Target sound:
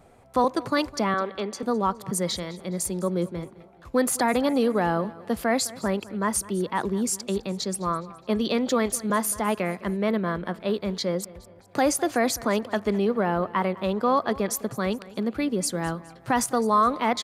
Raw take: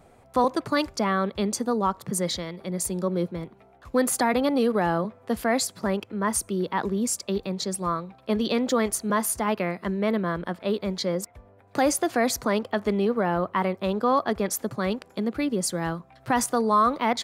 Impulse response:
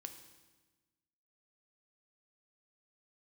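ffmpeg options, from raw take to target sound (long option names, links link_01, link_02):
-filter_complex "[0:a]asettb=1/sr,asplit=3[link_01][link_02][link_03];[link_01]atrim=end=1.144[link_04];[link_02]atrim=start=1.14:end=1.63,asetpts=PTS-STARTPTS,afade=type=in:duration=0.004:curve=qsin,afade=type=out:start_time=0.486:duration=0.004:curve=qsin,acrossover=split=280 4600:gain=0.178 1 0.224[link_05][link_06][link_07];[link_05][link_06][link_07]amix=inputs=3:normalize=0[link_08];[link_03]atrim=start=1.626[link_09];[link_04][link_08]acrossfade=duration=0.004:curve1=hsin:curve2=qsin[link_10];[link_10][link_09]acrossfade=duration=0.004:curve1=qsin:curve2=hsin,asplit=2[link_11][link_12];[link_12]aecho=0:1:208|416|624:0.106|0.0455|0.0196[link_13];[link_11][link_13]amix=inputs=2:normalize=0,aresample=32000,aresample=44100"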